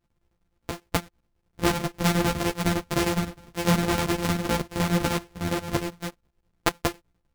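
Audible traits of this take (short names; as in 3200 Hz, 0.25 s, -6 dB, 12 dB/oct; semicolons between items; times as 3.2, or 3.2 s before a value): a buzz of ramps at a fixed pitch in blocks of 256 samples; chopped level 9.8 Hz, depth 65%, duty 70%; a shimmering, thickened sound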